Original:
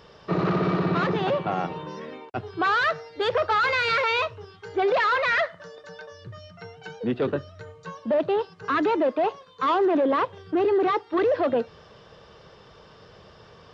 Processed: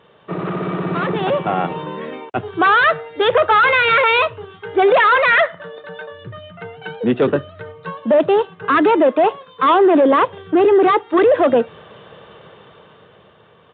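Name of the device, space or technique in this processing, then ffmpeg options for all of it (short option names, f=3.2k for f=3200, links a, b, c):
Bluetooth headset: -af "highpass=120,dynaudnorm=f=230:g=11:m=10dB,aresample=8000,aresample=44100" -ar 16000 -c:a sbc -b:a 64k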